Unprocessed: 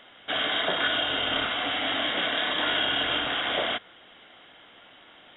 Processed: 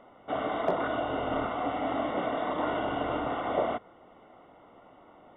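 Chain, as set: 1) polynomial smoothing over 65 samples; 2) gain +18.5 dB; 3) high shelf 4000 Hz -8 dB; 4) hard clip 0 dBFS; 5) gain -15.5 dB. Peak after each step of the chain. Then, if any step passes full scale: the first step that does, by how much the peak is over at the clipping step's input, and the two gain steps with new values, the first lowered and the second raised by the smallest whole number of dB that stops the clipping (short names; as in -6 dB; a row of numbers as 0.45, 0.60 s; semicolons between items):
-15.0, +3.5, +3.5, 0.0, -15.5 dBFS; step 2, 3.5 dB; step 2 +14.5 dB, step 5 -11.5 dB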